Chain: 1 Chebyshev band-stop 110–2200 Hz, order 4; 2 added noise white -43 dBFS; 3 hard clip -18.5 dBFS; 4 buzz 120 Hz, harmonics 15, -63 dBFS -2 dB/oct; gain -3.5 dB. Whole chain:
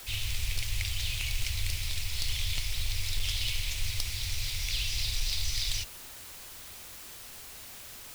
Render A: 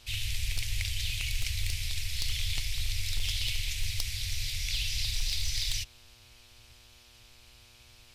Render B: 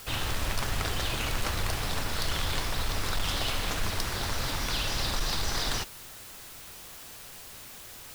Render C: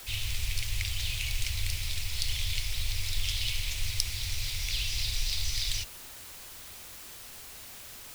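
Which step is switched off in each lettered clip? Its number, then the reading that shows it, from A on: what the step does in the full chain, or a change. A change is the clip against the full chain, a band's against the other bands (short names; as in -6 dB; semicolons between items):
2, 1 kHz band -7.0 dB; 1, 1 kHz band +15.5 dB; 3, distortion -21 dB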